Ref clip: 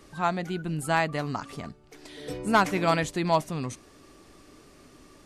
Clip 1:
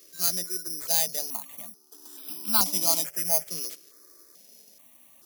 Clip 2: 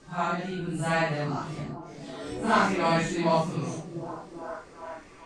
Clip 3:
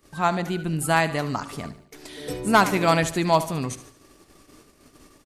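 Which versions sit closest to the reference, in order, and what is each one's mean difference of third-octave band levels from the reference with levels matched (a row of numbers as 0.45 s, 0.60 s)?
3, 2, 1; 3.0 dB, 5.5 dB, 13.5 dB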